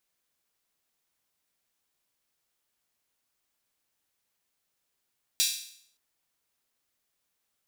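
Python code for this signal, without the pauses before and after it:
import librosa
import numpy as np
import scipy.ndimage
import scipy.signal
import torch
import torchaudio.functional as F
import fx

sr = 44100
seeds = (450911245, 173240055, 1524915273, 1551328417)

y = fx.drum_hat_open(sr, length_s=0.57, from_hz=3700.0, decay_s=0.63)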